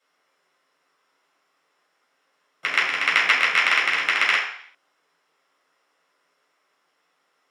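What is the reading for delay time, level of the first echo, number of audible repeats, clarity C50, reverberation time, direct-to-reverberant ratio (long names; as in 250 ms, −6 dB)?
no echo audible, no echo audible, no echo audible, 4.5 dB, 0.60 s, −6.5 dB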